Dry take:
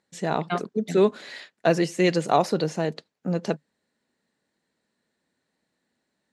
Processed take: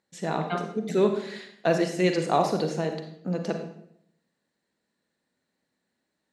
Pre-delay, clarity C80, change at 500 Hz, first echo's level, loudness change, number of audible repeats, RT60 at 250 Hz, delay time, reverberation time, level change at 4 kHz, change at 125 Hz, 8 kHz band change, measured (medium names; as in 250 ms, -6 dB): 37 ms, 9.5 dB, -2.0 dB, no echo, -2.0 dB, no echo, 0.85 s, no echo, 0.70 s, -2.5 dB, -2.0 dB, -2.5 dB